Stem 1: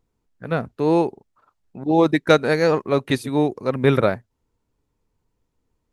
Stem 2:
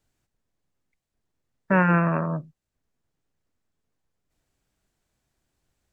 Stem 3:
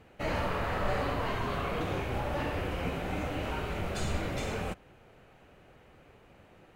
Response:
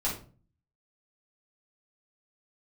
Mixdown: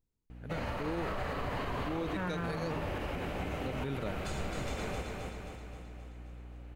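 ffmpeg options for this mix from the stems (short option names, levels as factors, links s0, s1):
-filter_complex "[0:a]equalizer=f=900:w=0.4:g=-8.5,volume=0.316,asplit=3[s0][s1][s2];[s0]atrim=end=2.83,asetpts=PTS-STARTPTS,afade=t=out:st=2.826:d=0.004:c=hsin[s3];[s1]atrim=start=2.83:end=3.56,asetpts=PTS-STARTPTS,volume=0[s4];[s2]atrim=start=3.56,asetpts=PTS-STARTPTS,afade=t=in:d=0.004:c=hsin[s5];[s3][s4][s5]concat=n=3:v=0:a=1[s6];[1:a]adelay=450,volume=0.266[s7];[2:a]aeval=exprs='val(0)+0.00794*(sin(2*PI*60*n/s)+sin(2*PI*2*60*n/s)/2+sin(2*PI*3*60*n/s)/3+sin(2*PI*4*60*n/s)/4+sin(2*PI*5*60*n/s)/5)':c=same,adelay=300,volume=0.596,asplit=2[s8][s9];[s9]volume=0.668,aecho=0:1:264|528|792|1056|1320|1584|1848|2112:1|0.56|0.314|0.176|0.0983|0.0551|0.0308|0.0173[s10];[s6][s7][s8][s10]amix=inputs=4:normalize=0,alimiter=level_in=1.41:limit=0.0631:level=0:latency=1:release=56,volume=0.708"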